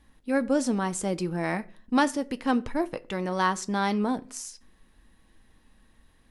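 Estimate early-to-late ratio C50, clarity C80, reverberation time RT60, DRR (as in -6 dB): 22.5 dB, 26.0 dB, 0.45 s, 11.0 dB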